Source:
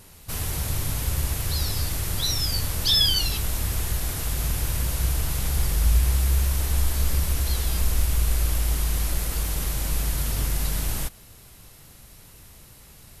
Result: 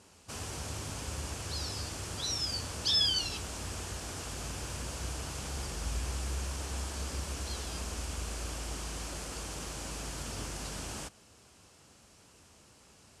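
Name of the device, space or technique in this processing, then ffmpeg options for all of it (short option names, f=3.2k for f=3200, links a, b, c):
car door speaker: -af "highpass=110,equalizer=f=120:t=q:w=4:g=-7,equalizer=f=160:t=q:w=4:g=-6,equalizer=f=2k:t=q:w=4:g=-6,equalizer=f=3.8k:t=q:w=4:g=-6,lowpass=f=8.2k:w=0.5412,lowpass=f=8.2k:w=1.3066,volume=-5dB"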